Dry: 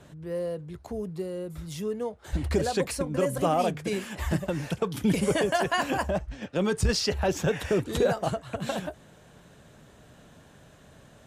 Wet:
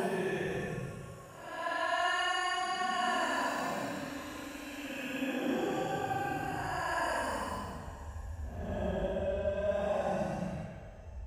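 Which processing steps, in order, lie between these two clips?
extreme stretch with random phases 19×, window 0.05 s, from 0:05.63
spring reverb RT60 2.3 s, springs 38/42 ms, chirp 25 ms, DRR 10 dB
level −8 dB

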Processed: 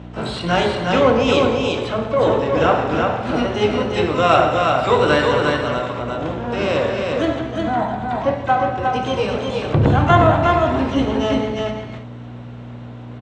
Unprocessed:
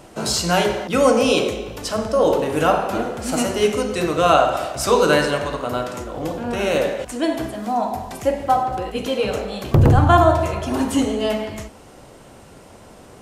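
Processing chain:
sub-octave generator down 2 octaves, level −3 dB
in parallel at −6 dB: asymmetric clip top −16.5 dBFS
on the sum: elliptic low-pass filter 3,800 Hz, stop band 50 dB
pitch-shifted copies added +12 semitones −14 dB
mains hum 60 Hz, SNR 12 dB
high-pass filter 91 Hz 12 dB per octave
on a send: single-tap delay 358 ms −3.5 dB
on the sum: level −2.5 dB

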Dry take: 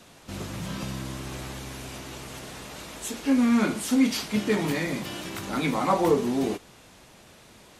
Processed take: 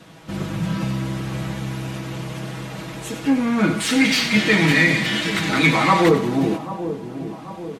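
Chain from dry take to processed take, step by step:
0:03.80–0:06.09: octave-band graphic EQ 2,000/4,000/8,000 Hz +11/+9/+7 dB
soft clipping −15.5 dBFS, distortion −15 dB
high-pass filter 140 Hz 6 dB per octave
bass and treble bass +8 dB, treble −8 dB
comb filter 6.2 ms, depth 61%
echo with a time of its own for lows and highs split 980 Hz, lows 789 ms, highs 93 ms, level −11 dB
level +5 dB

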